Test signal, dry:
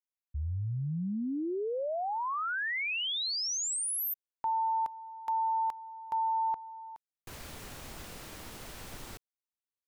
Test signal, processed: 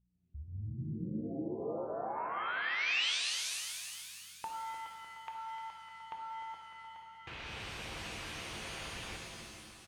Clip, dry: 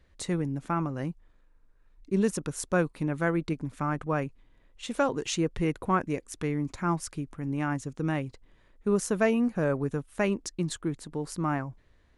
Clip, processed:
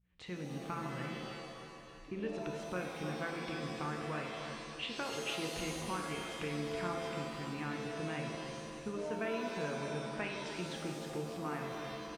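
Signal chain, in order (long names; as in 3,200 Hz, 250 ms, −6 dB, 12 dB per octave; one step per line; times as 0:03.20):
fade in at the beginning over 0.69 s
high-pass filter 42 Hz 12 dB per octave
parametric band 240 Hz −5.5 dB 0.97 octaves
notch filter 590 Hz, Q 12
downward compressor 3 to 1, threshold −46 dBFS
low-pass with resonance 2,800 Hz, resonance Q 2.5
hum with harmonics 60 Hz, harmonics 3, −77 dBFS −4 dB per octave
on a send: repeating echo 302 ms, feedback 55%, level −10 dB
on the sum: reverb with rising layers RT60 1.6 s, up +7 semitones, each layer −2 dB, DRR 2.5 dB
level +1 dB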